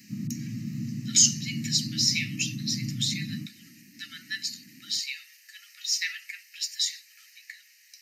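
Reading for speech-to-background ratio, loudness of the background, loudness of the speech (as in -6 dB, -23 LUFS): 8.5 dB, -35.0 LUFS, -26.5 LUFS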